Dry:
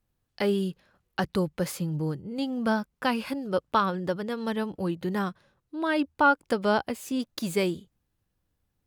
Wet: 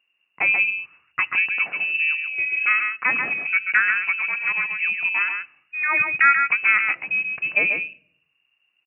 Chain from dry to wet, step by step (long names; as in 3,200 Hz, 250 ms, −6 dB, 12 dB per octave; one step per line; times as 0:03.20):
single-tap delay 136 ms −5.5 dB
voice inversion scrambler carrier 2,800 Hz
high-pass filter 150 Hz 12 dB per octave
on a send at −22 dB: low-shelf EQ 430 Hz +10 dB + convolution reverb RT60 0.65 s, pre-delay 5 ms
on the sum: level +5 dB